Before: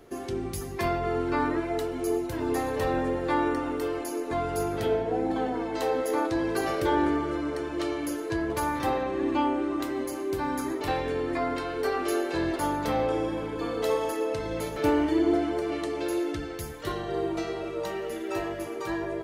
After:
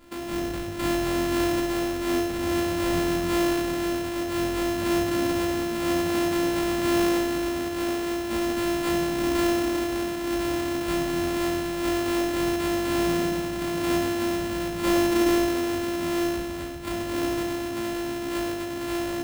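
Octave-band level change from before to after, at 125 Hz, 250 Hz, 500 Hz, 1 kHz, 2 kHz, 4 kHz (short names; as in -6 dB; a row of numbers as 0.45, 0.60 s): +2.5, +4.5, +1.0, -1.0, +4.0, +8.0 dB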